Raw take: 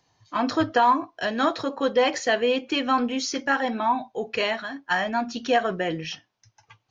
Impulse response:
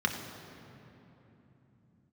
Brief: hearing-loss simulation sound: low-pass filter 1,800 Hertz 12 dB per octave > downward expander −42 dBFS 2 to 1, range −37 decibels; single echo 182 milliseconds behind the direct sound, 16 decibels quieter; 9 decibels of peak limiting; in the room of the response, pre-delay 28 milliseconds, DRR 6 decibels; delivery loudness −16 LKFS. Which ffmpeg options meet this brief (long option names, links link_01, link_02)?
-filter_complex "[0:a]alimiter=limit=-18dB:level=0:latency=1,aecho=1:1:182:0.158,asplit=2[link_01][link_02];[1:a]atrim=start_sample=2205,adelay=28[link_03];[link_02][link_03]afir=irnorm=-1:irlink=0,volume=-15.5dB[link_04];[link_01][link_04]amix=inputs=2:normalize=0,lowpass=1800,agate=range=-37dB:threshold=-42dB:ratio=2,volume=12dB"